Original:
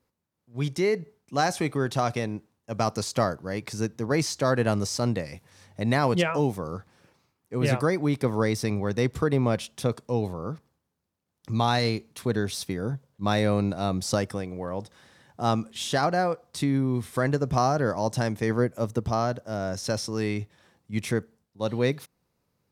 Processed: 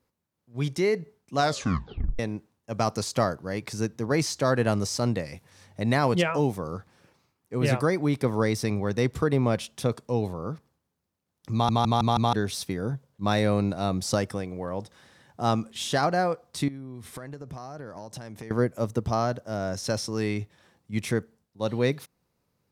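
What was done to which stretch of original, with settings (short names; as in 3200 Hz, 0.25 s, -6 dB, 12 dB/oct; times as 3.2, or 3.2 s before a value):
1.37 tape stop 0.82 s
11.53 stutter in place 0.16 s, 5 plays
16.68–18.51 compressor 12:1, threshold -35 dBFS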